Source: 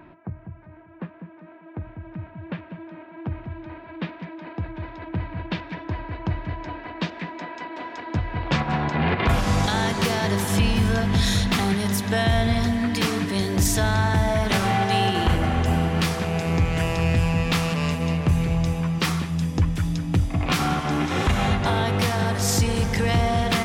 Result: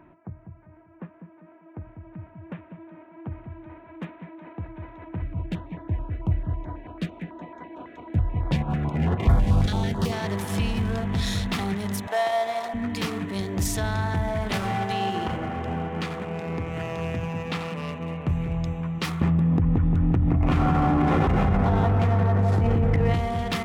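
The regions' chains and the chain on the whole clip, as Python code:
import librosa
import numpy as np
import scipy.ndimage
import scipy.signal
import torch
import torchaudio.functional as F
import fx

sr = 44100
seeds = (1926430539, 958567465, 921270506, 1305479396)

y = fx.chain(x, sr, fx.low_shelf(hz=130.0, db=12.0),
    fx.filter_held_notch(hz=9.1, low_hz=940.0, high_hz=2700.0), at=(5.22, 10.12))
y = fx.chain(y, sr, fx.cvsd(bps=64000),
    fx.highpass_res(hz=670.0, q=2.6), at=(12.07, 12.74))
y = fx.chain(y, sr, fx.highpass(hz=130.0, slope=12),
    fx.air_absorb(metres=100.0),
    fx.echo_single(ms=87, db=-9.5), at=(14.92, 18.27))
y = fx.chain(y, sr, fx.spacing_loss(db_at_10k=34),
    fx.echo_wet_lowpass(ms=174, feedback_pct=52, hz=2000.0, wet_db=-3),
    fx.env_flatten(amount_pct=100), at=(19.21, 23.14))
y = fx.wiener(y, sr, points=9)
y = fx.notch(y, sr, hz=1600.0, q=25.0)
y = y * 10.0 ** (-5.0 / 20.0)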